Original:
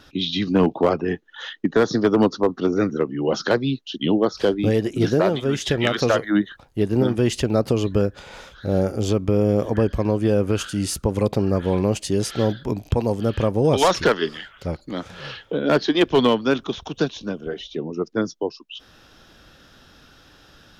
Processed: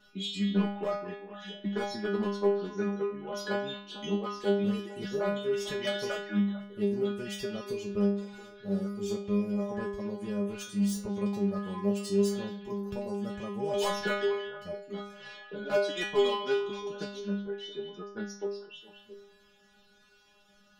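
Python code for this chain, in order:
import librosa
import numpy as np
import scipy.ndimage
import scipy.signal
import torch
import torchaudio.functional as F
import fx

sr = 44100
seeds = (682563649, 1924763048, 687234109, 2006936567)

p1 = fx.self_delay(x, sr, depth_ms=0.052)
p2 = fx.dereverb_blind(p1, sr, rt60_s=0.75)
p3 = fx.stiff_resonator(p2, sr, f0_hz=200.0, decay_s=0.65, stiffness=0.002)
p4 = p3 + fx.echo_stepped(p3, sr, ms=224, hz=2600.0, octaves=-1.4, feedback_pct=70, wet_db=-8.0, dry=0)
y = p4 * 10.0 ** (6.0 / 20.0)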